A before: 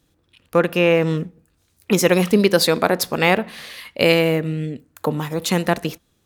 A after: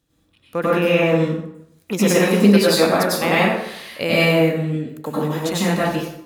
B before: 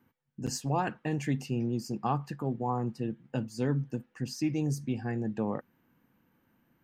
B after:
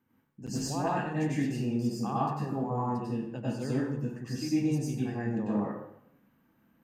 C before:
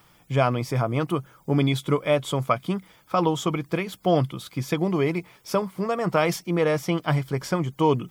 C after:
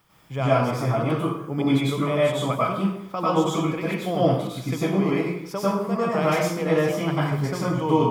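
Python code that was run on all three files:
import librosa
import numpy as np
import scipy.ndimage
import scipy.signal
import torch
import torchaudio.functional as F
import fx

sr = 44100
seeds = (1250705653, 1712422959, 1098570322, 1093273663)

y = fx.rev_plate(x, sr, seeds[0], rt60_s=0.76, hf_ratio=0.7, predelay_ms=85, drr_db=-8.0)
y = y * librosa.db_to_amplitude(-7.5)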